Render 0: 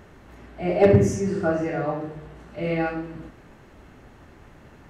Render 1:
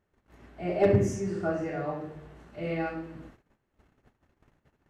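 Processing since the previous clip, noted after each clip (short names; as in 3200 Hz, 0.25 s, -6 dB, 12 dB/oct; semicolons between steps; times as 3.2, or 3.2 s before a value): gate -45 dBFS, range -22 dB; gain -6.5 dB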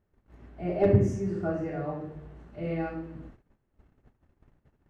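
tilt -2 dB/oct; gain -3 dB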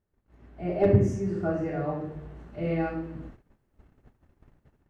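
AGC gain up to 9.5 dB; gain -6 dB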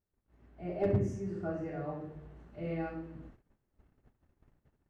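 hard clip -13 dBFS, distortion -21 dB; gain -8.5 dB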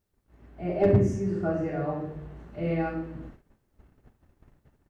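doubler 47 ms -14 dB; gain +8.5 dB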